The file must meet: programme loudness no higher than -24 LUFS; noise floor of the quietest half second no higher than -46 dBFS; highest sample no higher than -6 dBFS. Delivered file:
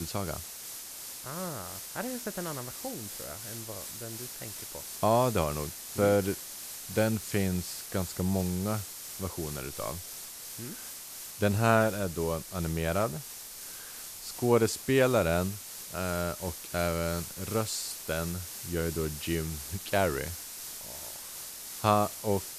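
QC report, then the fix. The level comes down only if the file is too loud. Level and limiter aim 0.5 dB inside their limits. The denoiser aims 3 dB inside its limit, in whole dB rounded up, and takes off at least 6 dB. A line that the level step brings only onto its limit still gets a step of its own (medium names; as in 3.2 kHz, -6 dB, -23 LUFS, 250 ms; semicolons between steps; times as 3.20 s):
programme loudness -31.5 LUFS: pass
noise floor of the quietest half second -44 dBFS: fail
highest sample -9.0 dBFS: pass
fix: noise reduction 6 dB, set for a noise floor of -44 dBFS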